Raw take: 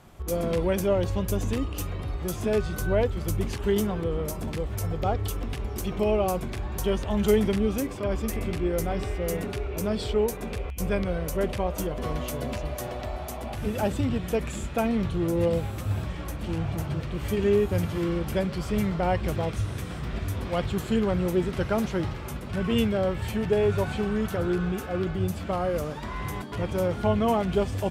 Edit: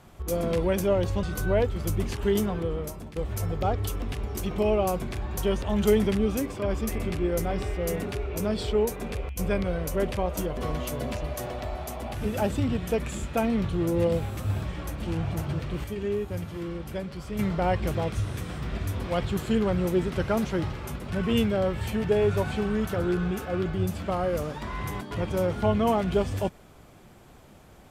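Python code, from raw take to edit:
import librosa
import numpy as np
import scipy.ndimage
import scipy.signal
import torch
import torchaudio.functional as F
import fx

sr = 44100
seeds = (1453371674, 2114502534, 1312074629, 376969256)

y = fx.edit(x, sr, fx.cut(start_s=1.23, length_s=1.41),
    fx.fade_out_to(start_s=3.82, length_s=0.75, curve='qsin', floor_db=-14.5),
    fx.clip_gain(start_s=17.25, length_s=1.55, db=-7.0), tone=tone)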